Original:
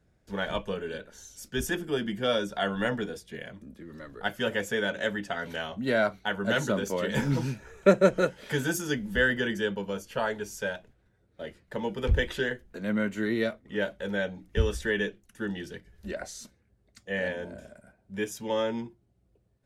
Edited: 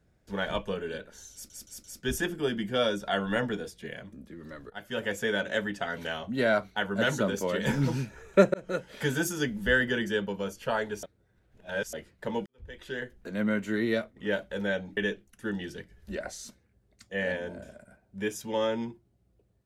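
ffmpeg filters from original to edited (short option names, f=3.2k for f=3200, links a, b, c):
-filter_complex "[0:a]asplit=10[a][b][c][d][e][f][g][h][i][j];[a]atrim=end=1.502[k];[b]atrim=start=1.328:end=1.502[l];[c]atrim=start=1.328:end=1.502[m];[d]atrim=start=1.328:end=4.19,asetpts=PTS-STARTPTS,afade=t=out:st=2.858:d=0.004:c=hsin:silence=0.112202[n];[e]atrim=start=4.19:end=8.03,asetpts=PTS-STARTPTS,afade=t=in:d=0.67:c=qsin:silence=0.112202,afade=t=out:st=3.836:d=0.004:c=hsin[o];[f]atrim=start=8.03:end=10.522,asetpts=PTS-STARTPTS,afade=t=in:d=0.41[p];[g]atrim=start=10.518:end=11.422,asetpts=PTS-STARTPTS,areverse[q];[h]atrim=start=11.418:end=11.95,asetpts=PTS-STARTPTS,afade=t=out:st=0.528:d=0.004:c=hsin[r];[i]atrim=start=11.95:end=14.462,asetpts=PTS-STARTPTS,afade=t=in:d=0.71:c=qua[s];[j]atrim=start=14.928[t];[k][l]acrossfade=d=0.004:c1=hsin:c2=hsin[u];[u][m]acrossfade=d=0.004:c1=hsin:c2=hsin[v];[n][o][p]concat=n=3:v=0:a=1[w];[v][w]acrossfade=d=0.004:c1=hsin:c2=hsin[x];[x][q]acrossfade=d=0.004:c1=hsin:c2=hsin[y];[r][s]concat=n=2:v=0:a=1[z];[y][z]acrossfade=d=0.004:c1=hsin:c2=hsin[aa];[aa][t]acrossfade=d=0.004:c1=hsin:c2=hsin"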